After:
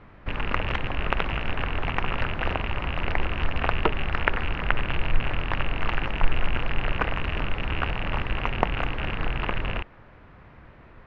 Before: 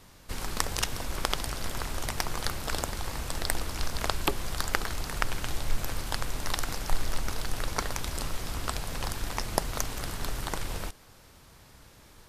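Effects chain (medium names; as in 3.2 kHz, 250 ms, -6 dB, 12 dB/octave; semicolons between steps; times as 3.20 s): rattle on loud lows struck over -38 dBFS, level -19 dBFS; low-pass 2.1 kHz 24 dB/octave; tape speed +11%; trim +6 dB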